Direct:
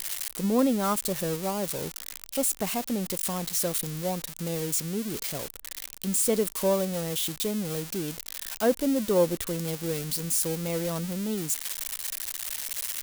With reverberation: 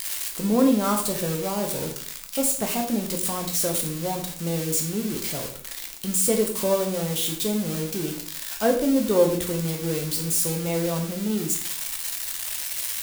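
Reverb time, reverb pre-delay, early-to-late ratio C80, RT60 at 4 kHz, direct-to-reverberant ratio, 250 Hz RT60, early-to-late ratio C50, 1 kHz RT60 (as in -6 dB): 0.55 s, 9 ms, 11.5 dB, 0.45 s, 2.0 dB, 0.65 s, 8.0 dB, 0.50 s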